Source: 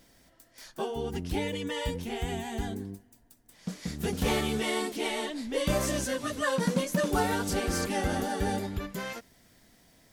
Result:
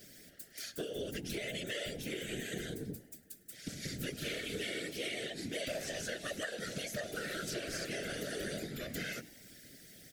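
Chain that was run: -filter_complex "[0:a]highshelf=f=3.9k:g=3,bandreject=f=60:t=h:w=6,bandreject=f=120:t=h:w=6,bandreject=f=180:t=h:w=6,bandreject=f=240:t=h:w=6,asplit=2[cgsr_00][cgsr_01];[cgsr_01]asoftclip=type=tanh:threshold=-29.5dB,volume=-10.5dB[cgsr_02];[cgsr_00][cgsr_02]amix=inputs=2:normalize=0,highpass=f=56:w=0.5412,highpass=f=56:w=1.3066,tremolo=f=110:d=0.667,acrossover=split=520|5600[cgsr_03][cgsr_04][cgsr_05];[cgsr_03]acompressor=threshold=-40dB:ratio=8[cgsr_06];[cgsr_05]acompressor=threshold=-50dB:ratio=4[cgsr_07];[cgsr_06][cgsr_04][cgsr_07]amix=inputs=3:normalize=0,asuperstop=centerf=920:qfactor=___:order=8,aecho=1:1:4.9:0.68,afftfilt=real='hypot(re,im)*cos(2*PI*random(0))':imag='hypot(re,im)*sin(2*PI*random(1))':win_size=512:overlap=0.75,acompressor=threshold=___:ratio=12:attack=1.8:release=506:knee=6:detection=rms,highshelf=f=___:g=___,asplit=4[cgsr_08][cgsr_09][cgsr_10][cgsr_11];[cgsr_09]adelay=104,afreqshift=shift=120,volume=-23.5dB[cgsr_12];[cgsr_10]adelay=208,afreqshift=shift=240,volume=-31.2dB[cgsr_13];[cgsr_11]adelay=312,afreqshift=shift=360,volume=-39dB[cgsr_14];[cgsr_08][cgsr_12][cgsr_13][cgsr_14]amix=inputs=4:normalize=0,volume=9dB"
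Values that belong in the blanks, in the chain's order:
1.2, -41dB, 11k, 3.5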